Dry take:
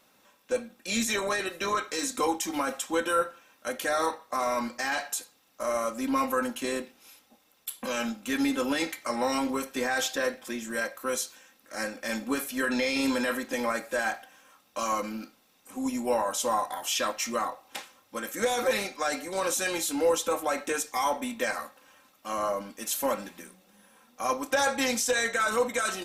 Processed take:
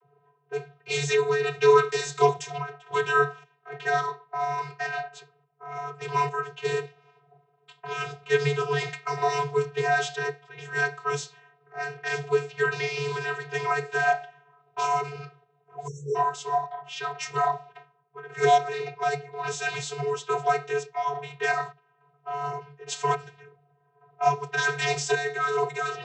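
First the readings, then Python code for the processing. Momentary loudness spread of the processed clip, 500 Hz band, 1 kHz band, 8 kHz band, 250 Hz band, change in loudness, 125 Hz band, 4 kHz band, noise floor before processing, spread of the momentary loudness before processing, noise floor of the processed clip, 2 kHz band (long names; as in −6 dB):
13 LU, +3.0 dB, +4.5 dB, −7.0 dB, below −10 dB, +2.0 dB, +15.5 dB, −2.0 dB, −65 dBFS, 11 LU, −67 dBFS, +2.5 dB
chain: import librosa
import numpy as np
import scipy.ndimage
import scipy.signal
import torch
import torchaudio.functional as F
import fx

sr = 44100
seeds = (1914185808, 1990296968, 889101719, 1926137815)

y = fx.tremolo_random(x, sr, seeds[0], hz=3.5, depth_pct=75)
y = fx.env_lowpass(y, sr, base_hz=810.0, full_db=-29.5)
y = fx.vocoder(y, sr, bands=32, carrier='square', carrier_hz=143.0)
y = fx.spec_erase(y, sr, start_s=15.88, length_s=0.28, low_hz=610.0, high_hz=5400.0)
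y = y * librosa.db_to_amplitude(7.0)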